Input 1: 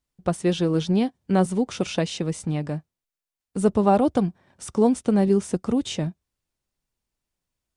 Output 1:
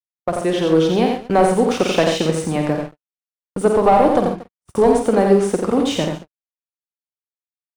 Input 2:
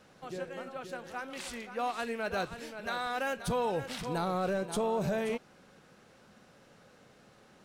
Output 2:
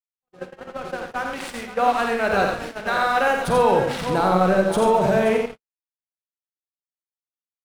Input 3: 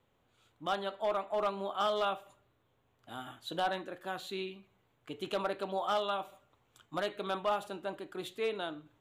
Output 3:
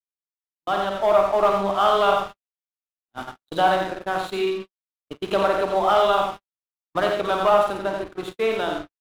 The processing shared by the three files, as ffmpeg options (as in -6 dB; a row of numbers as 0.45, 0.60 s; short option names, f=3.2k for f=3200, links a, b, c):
-filter_complex "[0:a]adynamicequalizer=threshold=0.002:dfrequency=7800:dqfactor=1:tfrequency=7800:tqfactor=1:attack=5:release=100:ratio=0.375:range=2:mode=boostabove:tftype=bell,acrossover=split=320[a][b];[a]acompressor=threshold=-34dB:ratio=6[c];[c][b]amix=inputs=2:normalize=0,asplit=2[d][e];[e]adelay=50,volume=-7.5dB[f];[d][f]amix=inputs=2:normalize=0,aexciter=amount=1.9:drive=5.3:freq=9.6k,asplit=2[g][h];[h]highpass=f=720:p=1,volume=16dB,asoftclip=type=tanh:threshold=-6dB[i];[g][i]amix=inputs=2:normalize=0,lowpass=f=1.3k:p=1,volume=-6dB,asplit=2[j][k];[k]aecho=0:1:87|108|232:0.596|0.251|0.133[l];[j][l]amix=inputs=2:normalize=0,aeval=exprs='sgn(val(0))*max(abs(val(0))-0.00631,0)':c=same,dynaudnorm=f=520:g=3:m=7dB,lowshelf=f=180:g=11,agate=range=-54dB:threshold=-30dB:ratio=16:detection=peak,volume=-1dB"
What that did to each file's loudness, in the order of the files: +6.0, +14.0, +14.0 LU